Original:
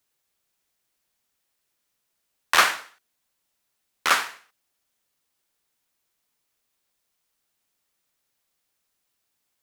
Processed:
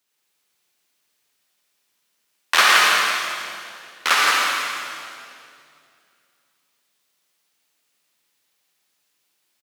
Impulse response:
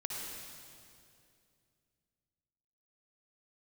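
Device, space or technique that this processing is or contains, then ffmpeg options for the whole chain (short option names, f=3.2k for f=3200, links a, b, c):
PA in a hall: -filter_complex "[0:a]highpass=160,equalizer=f=3.3k:t=o:w=1.9:g=4.5,aecho=1:1:168:0.596[a];[1:a]atrim=start_sample=2205[b];[a][b]afir=irnorm=-1:irlink=0,volume=2dB"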